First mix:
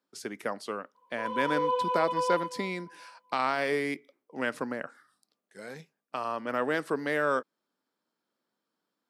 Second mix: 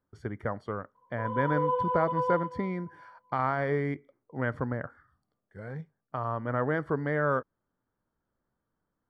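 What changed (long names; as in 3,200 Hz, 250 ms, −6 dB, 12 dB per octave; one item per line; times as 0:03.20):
speech: remove high-pass filter 210 Hz 24 dB per octave
master: add Savitzky-Golay smoothing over 41 samples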